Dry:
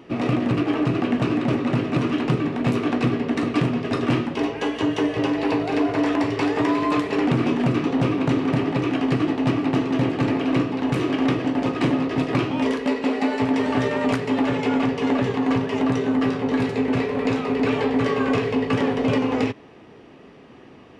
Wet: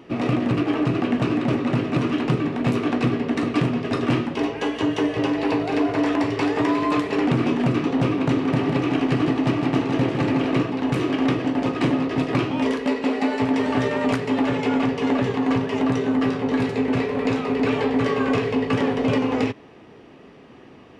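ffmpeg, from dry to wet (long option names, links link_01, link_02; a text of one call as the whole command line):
ffmpeg -i in.wav -filter_complex "[0:a]asettb=1/sr,asplit=3[link_01][link_02][link_03];[link_01]atrim=end=8.394[link_04];[link_02]atrim=start=8.39:end=10.7,asetpts=PTS-STARTPTS,afade=type=in:duration=0.004:curve=qsin,afade=type=out:start_time=2.306:duration=0.004:curve=qsin,aecho=1:1:158:0.473,atrim=end_sample=101871[link_05];[link_03]atrim=start=10.696[link_06];[link_04][link_05]acrossfade=duration=0.004:curve1=hsin:curve2=qsin[link_07];[link_07][link_06]acrossfade=duration=0.004:curve1=qsin:curve2=hsin" out.wav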